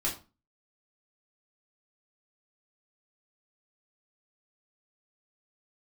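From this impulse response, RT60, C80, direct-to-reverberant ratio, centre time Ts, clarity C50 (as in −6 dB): 0.30 s, 15.5 dB, −5.5 dB, 25 ms, 9.5 dB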